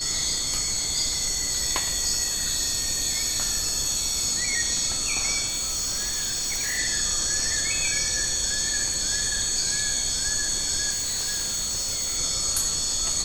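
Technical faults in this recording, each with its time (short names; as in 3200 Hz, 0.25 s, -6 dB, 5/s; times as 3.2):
tone 4400 Hz -30 dBFS
5.46–6.79 clipped -24 dBFS
10.9–12.18 clipped -24 dBFS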